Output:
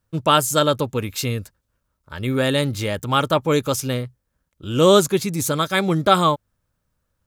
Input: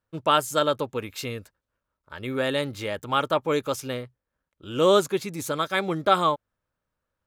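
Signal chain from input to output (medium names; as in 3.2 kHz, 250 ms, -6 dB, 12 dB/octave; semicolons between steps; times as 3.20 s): tone controls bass +9 dB, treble +7 dB; trim +4 dB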